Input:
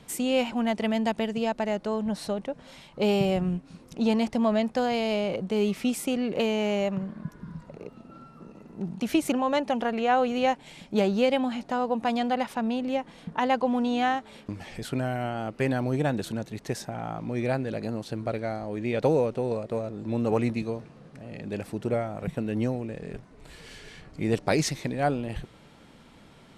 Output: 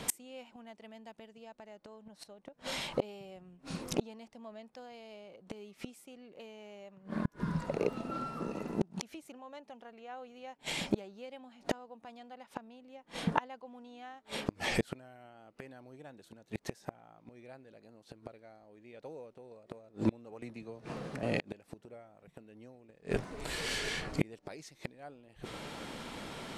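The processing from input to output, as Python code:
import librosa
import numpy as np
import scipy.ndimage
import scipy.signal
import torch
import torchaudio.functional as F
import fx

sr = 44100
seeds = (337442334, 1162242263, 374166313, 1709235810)

y = fx.bass_treble(x, sr, bass_db=-7, treble_db=1)
y = fx.gate_flip(y, sr, shuts_db=-27.0, range_db=-34)
y = fx.band_squash(y, sr, depth_pct=100, at=(20.42, 21.23))
y = y * librosa.db_to_amplitude(11.0)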